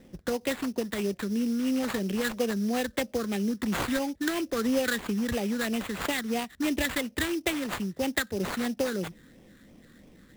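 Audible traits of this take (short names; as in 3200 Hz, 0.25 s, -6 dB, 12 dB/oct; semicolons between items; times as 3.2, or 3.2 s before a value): phasing stages 8, 3 Hz, lowest notch 750–1600 Hz; aliases and images of a low sample rate 5600 Hz, jitter 20%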